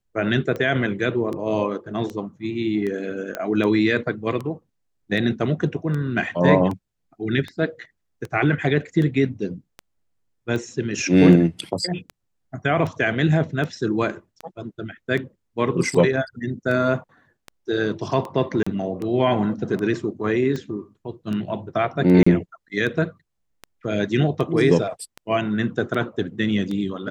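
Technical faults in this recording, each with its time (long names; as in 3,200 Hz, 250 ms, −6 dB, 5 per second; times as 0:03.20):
scratch tick 78 rpm −18 dBFS
0:03.35: click −13 dBFS
0:18.63–0:18.66: drop-out 35 ms
0:22.23–0:22.27: drop-out 35 ms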